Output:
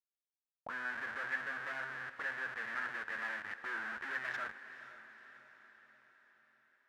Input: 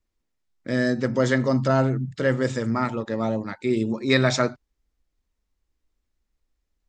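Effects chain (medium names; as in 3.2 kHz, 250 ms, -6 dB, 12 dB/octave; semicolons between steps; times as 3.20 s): treble shelf 3.4 kHz -9 dB; hum notches 60/120/180 Hz; Schmitt trigger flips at -31.5 dBFS; auto-wah 480–1800 Hz, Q 8.5, up, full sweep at -24 dBFS; echo that smears into a reverb 482 ms, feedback 55%, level -13 dB; trim +3.5 dB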